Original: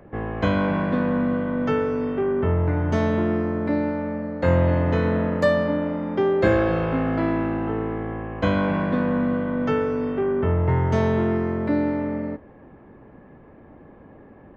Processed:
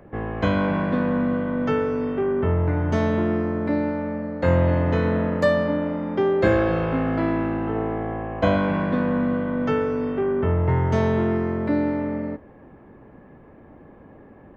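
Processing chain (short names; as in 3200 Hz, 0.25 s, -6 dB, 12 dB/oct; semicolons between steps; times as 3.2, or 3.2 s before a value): 7.75–8.57 bell 680 Hz +8 dB 0.55 oct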